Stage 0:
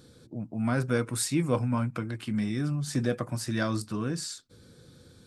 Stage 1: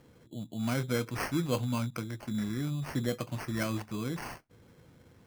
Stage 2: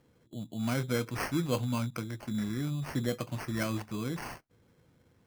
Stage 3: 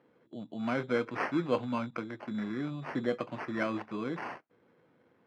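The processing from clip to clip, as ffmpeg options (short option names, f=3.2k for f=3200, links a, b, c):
-af "acrusher=samples=12:mix=1:aa=0.000001,volume=-4dB"
-af "agate=range=-7dB:threshold=-48dB:ratio=16:detection=peak"
-af "highpass=270,lowpass=2.2k,volume=3.5dB"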